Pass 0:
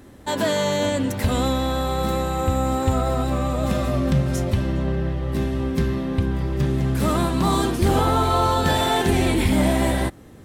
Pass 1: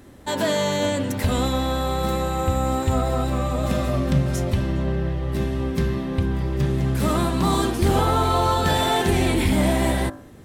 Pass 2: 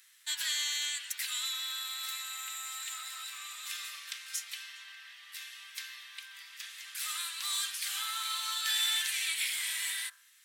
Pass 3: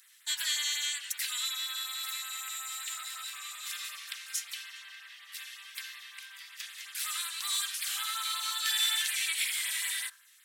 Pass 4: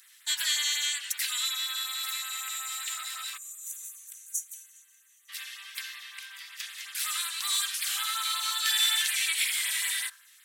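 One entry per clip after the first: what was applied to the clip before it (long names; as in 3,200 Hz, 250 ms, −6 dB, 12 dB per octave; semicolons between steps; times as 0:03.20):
hum removal 52.92 Hz, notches 33
Bessel high-pass filter 2,700 Hz, order 6
auto-filter notch sine 5.4 Hz 520–6,400 Hz; level +2.5 dB
gain on a spectral selection 0:03.37–0:05.29, 500–5,800 Hz −25 dB; level +3.5 dB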